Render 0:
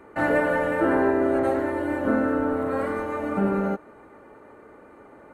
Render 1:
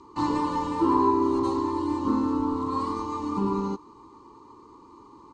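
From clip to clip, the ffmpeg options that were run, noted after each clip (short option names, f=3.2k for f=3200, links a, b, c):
-af "firequalizer=gain_entry='entry(120,0);entry(190,-4);entry(340,2);entry(650,-28);entry(1000,14);entry(1500,-23);entry(3000,0);entry(4500,14);entry(7000,8);entry(12000,-27)':delay=0.05:min_phase=1"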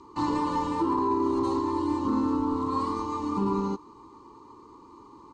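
-af "alimiter=limit=-18dB:level=0:latency=1:release=26"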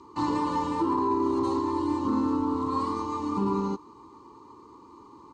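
-af "highpass=52"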